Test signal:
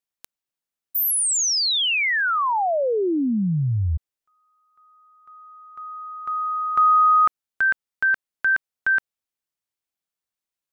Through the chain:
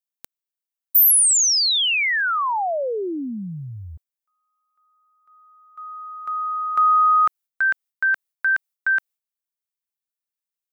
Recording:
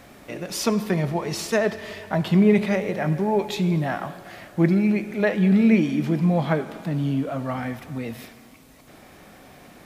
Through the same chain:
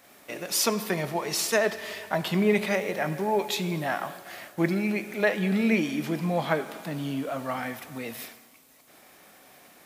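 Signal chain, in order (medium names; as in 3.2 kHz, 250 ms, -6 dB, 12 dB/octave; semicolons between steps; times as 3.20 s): RIAA curve recording; expander -39 dBFS, range -9 dB; treble shelf 3.6 kHz -8 dB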